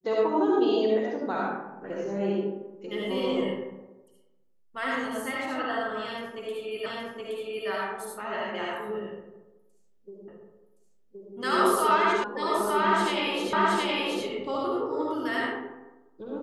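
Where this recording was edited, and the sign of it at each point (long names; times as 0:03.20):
0:06.86: the same again, the last 0.82 s
0:10.28: the same again, the last 1.07 s
0:12.24: cut off before it has died away
0:13.53: the same again, the last 0.72 s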